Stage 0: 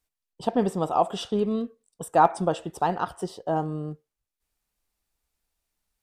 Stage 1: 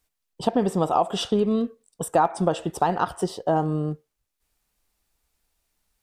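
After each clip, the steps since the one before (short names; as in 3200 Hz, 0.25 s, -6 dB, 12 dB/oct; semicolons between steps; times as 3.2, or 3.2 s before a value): compressor 4:1, threshold -24 dBFS, peak gain reduction 10.5 dB; gain +6.5 dB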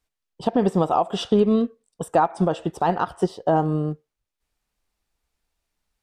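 high shelf 8600 Hz -11 dB; maximiser +12 dB; upward expander 1.5:1, over -22 dBFS; gain -7 dB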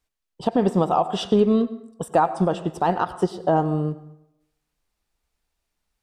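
plate-style reverb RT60 0.82 s, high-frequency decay 0.6×, pre-delay 80 ms, DRR 15.5 dB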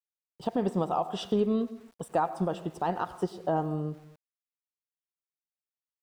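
sample gate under -46.5 dBFS; gain -8.5 dB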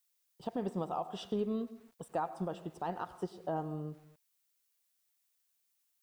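added noise blue -70 dBFS; gain -8 dB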